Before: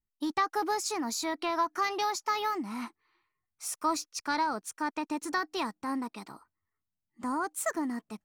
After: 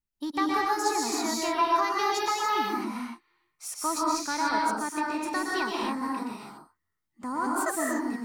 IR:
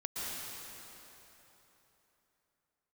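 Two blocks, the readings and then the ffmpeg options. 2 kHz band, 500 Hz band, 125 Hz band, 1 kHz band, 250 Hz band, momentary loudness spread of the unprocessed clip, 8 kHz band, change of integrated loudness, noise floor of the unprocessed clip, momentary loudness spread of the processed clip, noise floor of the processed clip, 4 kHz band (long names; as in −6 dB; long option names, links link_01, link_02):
+4.5 dB, +4.0 dB, can't be measured, +4.5 dB, +4.0 dB, 9 LU, +4.0 dB, +4.0 dB, below −85 dBFS, 12 LU, −81 dBFS, +4.0 dB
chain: -filter_complex "[1:a]atrim=start_sample=2205,afade=type=out:start_time=0.35:duration=0.01,atrim=end_sample=15876[link_01];[0:a][link_01]afir=irnorm=-1:irlink=0,volume=2.5dB"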